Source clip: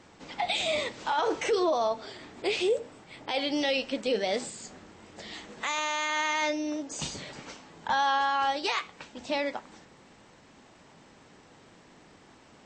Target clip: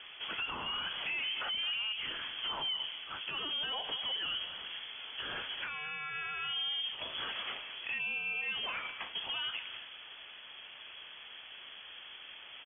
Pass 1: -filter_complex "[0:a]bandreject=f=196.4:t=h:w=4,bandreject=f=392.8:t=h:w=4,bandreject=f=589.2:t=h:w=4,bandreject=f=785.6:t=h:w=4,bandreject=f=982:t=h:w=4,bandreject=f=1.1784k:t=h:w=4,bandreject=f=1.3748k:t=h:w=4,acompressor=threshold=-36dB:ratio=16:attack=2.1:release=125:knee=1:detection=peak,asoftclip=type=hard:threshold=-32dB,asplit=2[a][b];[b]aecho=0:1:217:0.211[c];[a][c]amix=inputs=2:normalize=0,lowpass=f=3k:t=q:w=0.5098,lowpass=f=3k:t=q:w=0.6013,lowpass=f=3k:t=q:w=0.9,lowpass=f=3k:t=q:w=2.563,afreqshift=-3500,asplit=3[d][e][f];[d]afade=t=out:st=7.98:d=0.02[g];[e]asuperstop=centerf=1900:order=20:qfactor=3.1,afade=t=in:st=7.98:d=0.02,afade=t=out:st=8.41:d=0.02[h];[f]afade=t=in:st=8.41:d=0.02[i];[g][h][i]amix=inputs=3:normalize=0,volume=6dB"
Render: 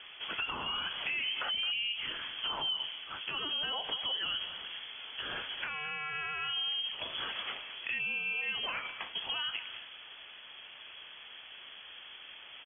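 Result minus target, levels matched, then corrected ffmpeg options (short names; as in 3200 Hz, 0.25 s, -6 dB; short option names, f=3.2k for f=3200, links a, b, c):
hard clip: distortion -16 dB
-filter_complex "[0:a]bandreject=f=196.4:t=h:w=4,bandreject=f=392.8:t=h:w=4,bandreject=f=589.2:t=h:w=4,bandreject=f=785.6:t=h:w=4,bandreject=f=982:t=h:w=4,bandreject=f=1.1784k:t=h:w=4,bandreject=f=1.3748k:t=h:w=4,acompressor=threshold=-36dB:ratio=16:attack=2.1:release=125:knee=1:detection=peak,asoftclip=type=hard:threshold=-38.5dB,asplit=2[a][b];[b]aecho=0:1:217:0.211[c];[a][c]amix=inputs=2:normalize=0,lowpass=f=3k:t=q:w=0.5098,lowpass=f=3k:t=q:w=0.6013,lowpass=f=3k:t=q:w=0.9,lowpass=f=3k:t=q:w=2.563,afreqshift=-3500,asplit=3[d][e][f];[d]afade=t=out:st=7.98:d=0.02[g];[e]asuperstop=centerf=1900:order=20:qfactor=3.1,afade=t=in:st=7.98:d=0.02,afade=t=out:st=8.41:d=0.02[h];[f]afade=t=in:st=8.41:d=0.02[i];[g][h][i]amix=inputs=3:normalize=0,volume=6dB"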